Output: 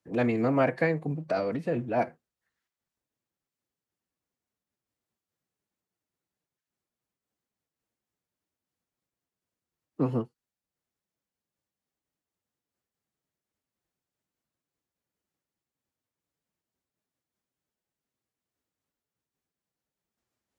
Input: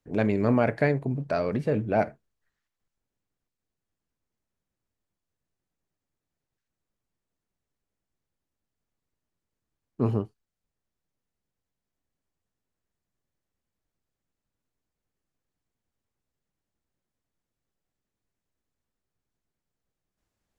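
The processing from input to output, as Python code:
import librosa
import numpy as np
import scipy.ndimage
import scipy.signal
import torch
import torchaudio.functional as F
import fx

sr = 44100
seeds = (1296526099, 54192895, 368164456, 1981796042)

y = fx.highpass(x, sr, hz=150.0, slope=6)
y = fx.pitch_keep_formants(y, sr, semitones=2.0)
y = fx.am_noise(y, sr, seeds[0], hz=5.7, depth_pct=55)
y = y * librosa.db_to_amplitude(2.0)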